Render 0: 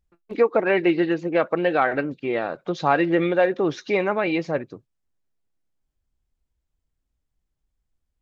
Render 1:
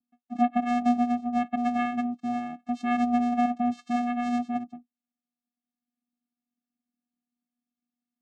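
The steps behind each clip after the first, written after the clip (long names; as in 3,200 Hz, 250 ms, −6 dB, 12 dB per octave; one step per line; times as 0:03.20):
channel vocoder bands 4, square 242 Hz
level −4 dB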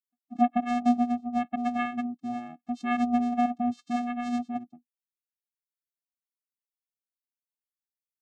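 spectral dynamics exaggerated over time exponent 1.5
level +1.5 dB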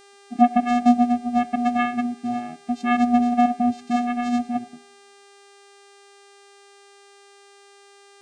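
coupled-rooms reverb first 0.69 s, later 2.2 s, from −28 dB, DRR 18.5 dB
hum with harmonics 400 Hz, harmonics 24, −58 dBFS −4 dB per octave
level +7 dB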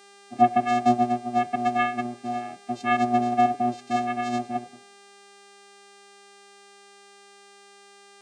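sub-octave generator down 1 octave, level +1 dB
high-pass filter 380 Hz 12 dB per octave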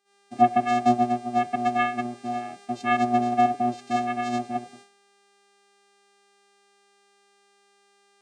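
noise gate −48 dBFS, range −24 dB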